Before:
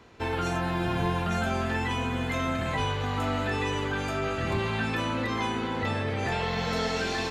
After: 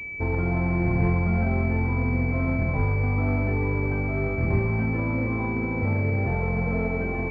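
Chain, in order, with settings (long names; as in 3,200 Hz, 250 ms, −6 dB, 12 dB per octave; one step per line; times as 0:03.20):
spectral tilt −3 dB per octave
switching amplifier with a slow clock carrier 2,300 Hz
level −1.5 dB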